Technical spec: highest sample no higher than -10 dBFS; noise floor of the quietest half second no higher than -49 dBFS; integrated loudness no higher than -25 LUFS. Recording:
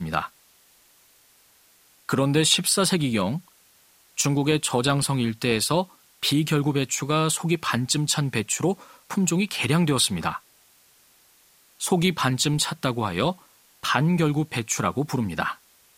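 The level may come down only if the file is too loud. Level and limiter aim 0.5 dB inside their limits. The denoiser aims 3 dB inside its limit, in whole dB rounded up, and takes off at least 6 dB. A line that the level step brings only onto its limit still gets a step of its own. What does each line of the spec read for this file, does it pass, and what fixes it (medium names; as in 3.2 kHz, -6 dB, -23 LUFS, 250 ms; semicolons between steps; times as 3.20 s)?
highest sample -5.0 dBFS: fail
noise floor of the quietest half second -58 dBFS: pass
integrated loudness -23.5 LUFS: fail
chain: trim -2 dB; peak limiter -10.5 dBFS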